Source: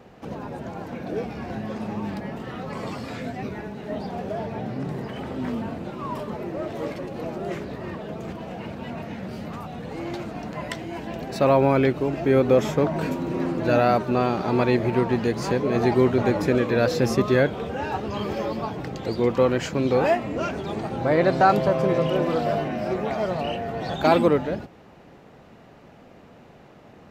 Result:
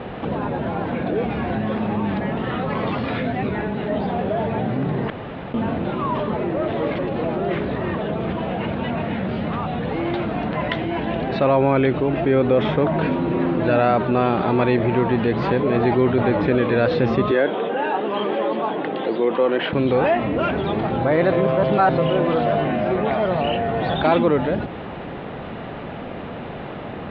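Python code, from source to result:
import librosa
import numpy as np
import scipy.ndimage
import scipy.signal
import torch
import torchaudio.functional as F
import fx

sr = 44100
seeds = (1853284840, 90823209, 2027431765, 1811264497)

y = fx.cabinet(x, sr, low_hz=230.0, low_slope=24, high_hz=3700.0, hz=(240.0, 1300.0, 2300.0), db=(-4, -3, -4), at=(17.31, 19.73))
y = fx.edit(y, sr, fx.room_tone_fill(start_s=5.1, length_s=0.44),
    fx.reverse_span(start_s=21.32, length_s=0.66), tone=tone)
y = scipy.signal.sosfilt(scipy.signal.cheby1(4, 1.0, 3600.0, 'lowpass', fs=sr, output='sos'), y)
y = fx.env_flatten(y, sr, amount_pct=50)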